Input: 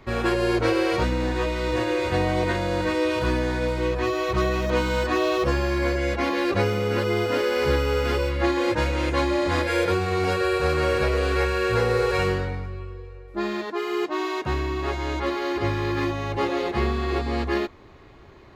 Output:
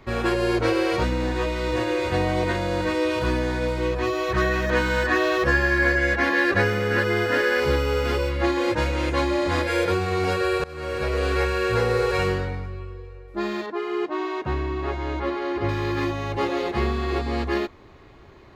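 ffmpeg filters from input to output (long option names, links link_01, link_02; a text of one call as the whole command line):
ffmpeg -i in.wav -filter_complex "[0:a]asettb=1/sr,asplit=3[link_01][link_02][link_03];[link_01]atrim=end=4.314[link_04];[link_02]atrim=start=4.31:end=7.6,asetpts=PTS-STARTPTS,afade=type=in:duration=0.004:curve=qsin,afade=type=out:start_time=3.286:duration=0.004:curve=qsin,equalizer=frequency=1700:width_type=o:width=0.32:gain=14.5[link_05];[link_03]atrim=start=7.596[link_06];[link_04][link_05]acrossfade=duration=0.004:curve1=hsin:curve2=qsin[link_07];[link_07][link_06]acrossfade=duration=0.004:curve1=qsin:curve2=hsin,asettb=1/sr,asplit=3[link_08][link_09][link_10];[link_08]atrim=end=13.664[link_11];[link_09]atrim=start=13.66:end=15.69,asetpts=PTS-STARTPTS,afade=type=in:duration=0.004:curve=qsin,afade=type=out:start_time=2.026:duration=0.004:curve=qsin,aemphasis=mode=reproduction:type=75kf[link_12];[link_10]atrim=start=15.686[link_13];[link_11][link_12]acrossfade=duration=0.004:curve1=hsin:curve2=qsin[link_14];[link_14][link_13]acrossfade=duration=0.004:curve1=qsin:curve2=hsin,asplit=2[link_15][link_16];[link_15]atrim=end=10.64,asetpts=PTS-STARTPTS,afade=type=out:start_time=10.636:duration=0.004:curve=hsin:silence=0.0668344[link_17];[link_16]atrim=start=10.64,asetpts=PTS-STARTPTS,afade=type=in:duration=0.61:silence=0.0668344[link_18];[link_17][link_18]concat=n=2:v=0:a=1" out.wav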